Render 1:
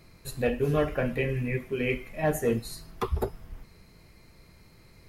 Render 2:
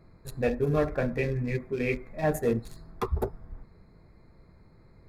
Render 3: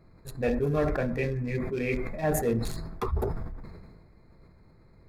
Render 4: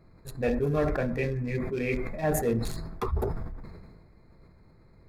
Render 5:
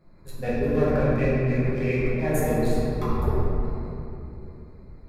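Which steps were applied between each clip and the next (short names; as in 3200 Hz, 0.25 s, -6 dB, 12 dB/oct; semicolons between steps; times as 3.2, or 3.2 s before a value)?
Wiener smoothing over 15 samples; notch 3000 Hz, Q 7.8
sustainer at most 35 dB/s; gain -1.5 dB
nothing audible
shoebox room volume 120 m³, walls hard, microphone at 1 m; gain -5 dB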